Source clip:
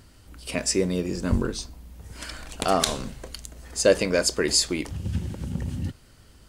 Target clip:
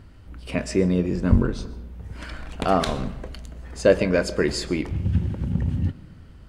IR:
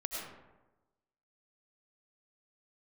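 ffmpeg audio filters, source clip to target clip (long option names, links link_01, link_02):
-filter_complex "[0:a]bass=frequency=250:gain=5,treble=frequency=4000:gain=-15,asplit=2[link_01][link_02];[1:a]atrim=start_sample=2205,adelay=22[link_03];[link_02][link_03]afir=irnorm=-1:irlink=0,volume=-16.5dB[link_04];[link_01][link_04]amix=inputs=2:normalize=0,volume=1.5dB"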